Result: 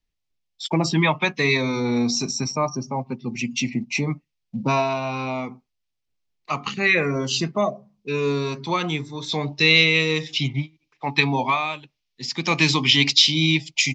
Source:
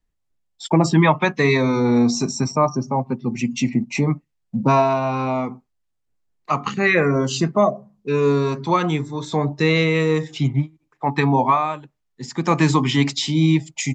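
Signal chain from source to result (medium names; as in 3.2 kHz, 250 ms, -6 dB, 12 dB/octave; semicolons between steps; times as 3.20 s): high-order bell 3.6 kHz +9 dB, from 9.28 s +15.5 dB; trim -5.5 dB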